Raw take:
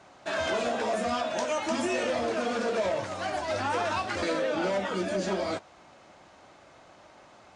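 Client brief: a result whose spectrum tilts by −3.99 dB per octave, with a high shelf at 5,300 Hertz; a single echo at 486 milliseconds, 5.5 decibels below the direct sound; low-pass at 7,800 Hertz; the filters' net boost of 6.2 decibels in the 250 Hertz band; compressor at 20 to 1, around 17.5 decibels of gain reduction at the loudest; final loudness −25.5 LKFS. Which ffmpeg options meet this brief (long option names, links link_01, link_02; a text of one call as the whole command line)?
ffmpeg -i in.wav -af "lowpass=7800,equalizer=frequency=250:width_type=o:gain=8,highshelf=frequency=5300:gain=-8,acompressor=threshold=-39dB:ratio=20,aecho=1:1:486:0.531,volume=17.5dB" out.wav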